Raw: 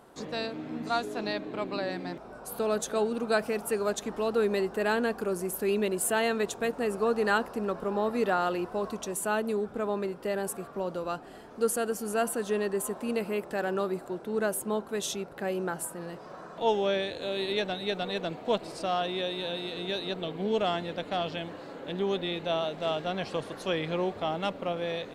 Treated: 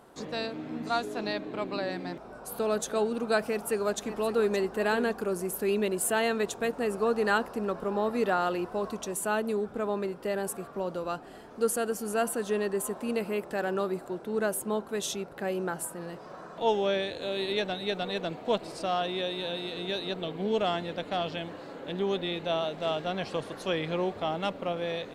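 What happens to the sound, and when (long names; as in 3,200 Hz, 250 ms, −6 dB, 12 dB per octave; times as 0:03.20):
0:03.40–0:04.54: delay throw 570 ms, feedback 10%, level −12 dB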